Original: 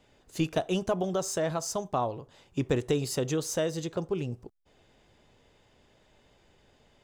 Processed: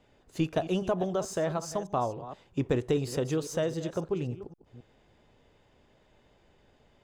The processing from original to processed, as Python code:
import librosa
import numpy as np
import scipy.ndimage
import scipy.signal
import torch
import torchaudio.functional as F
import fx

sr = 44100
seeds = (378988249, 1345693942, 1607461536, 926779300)

y = fx.reverse_delay(x, sr, ms=267, wet_db=-13.5)
y = fx.high_shelf(y, sr, hz=3400.0, db=-8.0)